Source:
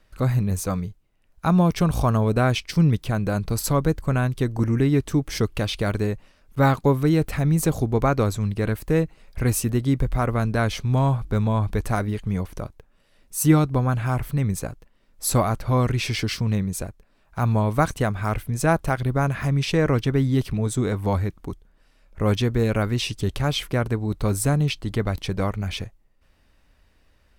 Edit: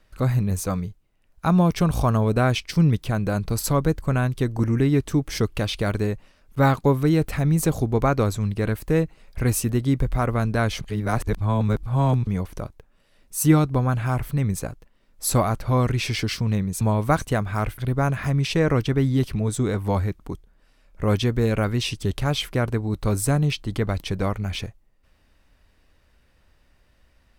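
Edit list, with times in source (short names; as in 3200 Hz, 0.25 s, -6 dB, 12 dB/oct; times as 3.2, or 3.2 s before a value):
10.81–12.27 reverse
16.81–17.5 cut
18.47–18.96 cut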